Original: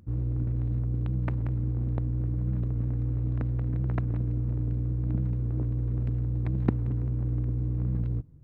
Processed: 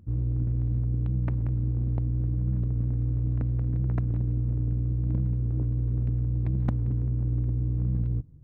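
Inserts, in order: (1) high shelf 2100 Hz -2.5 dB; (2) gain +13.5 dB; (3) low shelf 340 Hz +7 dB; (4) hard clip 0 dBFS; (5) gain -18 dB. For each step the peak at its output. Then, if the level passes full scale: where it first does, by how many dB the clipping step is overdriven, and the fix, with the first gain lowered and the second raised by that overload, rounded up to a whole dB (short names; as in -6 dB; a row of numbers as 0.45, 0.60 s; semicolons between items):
-8.5, +5.0, +9.0, 0.0, -18.0 dBFS; step 2, 9.0 dB; step 2 +4.5 dB, step 5 -9 dB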